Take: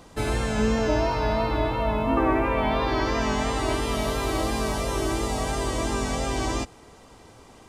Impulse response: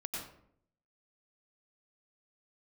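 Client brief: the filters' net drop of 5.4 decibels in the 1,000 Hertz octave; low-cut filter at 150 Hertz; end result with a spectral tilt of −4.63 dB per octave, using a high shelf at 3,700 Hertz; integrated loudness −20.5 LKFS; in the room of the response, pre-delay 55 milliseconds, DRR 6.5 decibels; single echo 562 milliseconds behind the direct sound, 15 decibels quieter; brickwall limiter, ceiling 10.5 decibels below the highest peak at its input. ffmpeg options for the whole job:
-filter_complex "[0:a]highpass=150,equalizer=frequency=1000:width_type=o:gain=-6,highshelf=frequency=3700:gain=-9,alimiter=limit=-23dB:level=0:latency=1,aecho=1:1:562:0.178,asplit=2[link_01][link_02];[1:a]atrim=start_sample=2205,adelay=55[link_03];[link_02][link_03]afir=irnorm=-1:irlink=0,volume=-7.5dB[link_04];[link_01][link_04]amix=inputs=2:normalize=0,volume=10dB"

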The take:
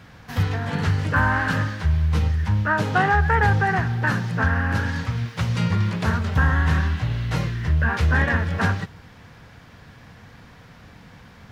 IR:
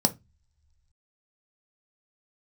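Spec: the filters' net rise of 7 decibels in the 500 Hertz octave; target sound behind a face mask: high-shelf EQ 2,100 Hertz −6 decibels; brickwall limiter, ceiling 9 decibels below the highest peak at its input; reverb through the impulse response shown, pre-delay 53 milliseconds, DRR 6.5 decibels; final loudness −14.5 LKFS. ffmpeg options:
-filter_complex "[0:a]equalizer=frequency=500:width_type=o:gain=9,alimiter=limit=-14dB:level=0:latency=1,asplit=2[link_01][link_02];[1:a]atrim=start_sample=2205,adelay=53[link_03];[link_02][link_03]afir=irnorm=-1:irlink=0,volume=-16.5dB[link_04];[link_01][link_04]amix=inputs=2:normalize=0,highshelf=frequency=2100:gain=-6,volume=7dB"

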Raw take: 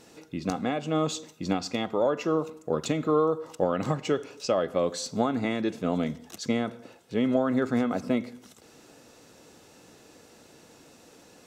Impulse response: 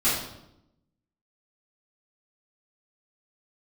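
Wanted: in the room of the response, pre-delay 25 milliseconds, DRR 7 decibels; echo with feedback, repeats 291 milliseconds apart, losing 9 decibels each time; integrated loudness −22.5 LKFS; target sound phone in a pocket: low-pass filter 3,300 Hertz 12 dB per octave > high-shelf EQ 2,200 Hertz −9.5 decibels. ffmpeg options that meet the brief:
-filter_complex "[0:a]aecho=1:1:291|582|873|1164:0.355|0.124|0.0435|0.0152,asplit=2[link_01][link_02];[1:a]atrim=start_sample=2205,adelay=25[link_03];[link_02][link_03]afir=irnorm=-1:irlink=0,volume=-20.5dB[link_04];[link_01][link_04]amix=inputs=2:normalize=0,lowpass=3300,highshelf=frequency=2200:gain=-9.5,volume=5dB"

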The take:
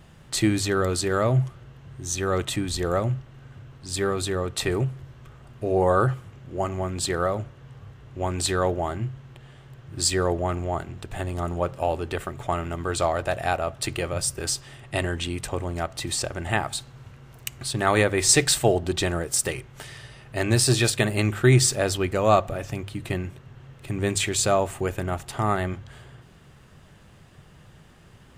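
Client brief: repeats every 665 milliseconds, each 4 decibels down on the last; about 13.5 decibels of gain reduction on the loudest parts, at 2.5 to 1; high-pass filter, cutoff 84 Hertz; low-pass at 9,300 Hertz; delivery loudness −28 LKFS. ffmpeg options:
ffmpeg -i in.wav -af "highpass=84,lowpass=9300,acompressor=threshold=-34dB:ratio=2.5,aecho=1:1:665|1330|1995|2660|3325|3990|4655|5320|5985:0.631|0.398|0.25|0.158|0.0994|0.0626|0.0394|0.0249|0.0157,volume=5.5dB" out.wav

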